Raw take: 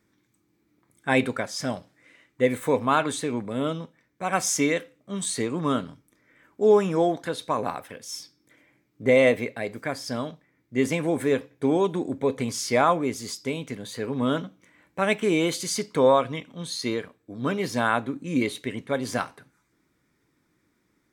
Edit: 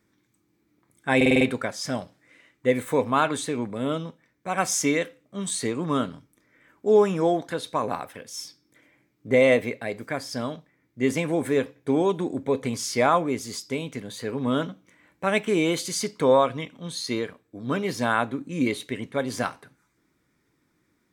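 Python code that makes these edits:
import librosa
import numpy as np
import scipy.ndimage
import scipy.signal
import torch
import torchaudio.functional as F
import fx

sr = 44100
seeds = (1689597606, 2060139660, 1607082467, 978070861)

y = fx.edit(x, sr, fx.stutter(start_s=1.16, slice_s=0.05, count=6), tone=tone)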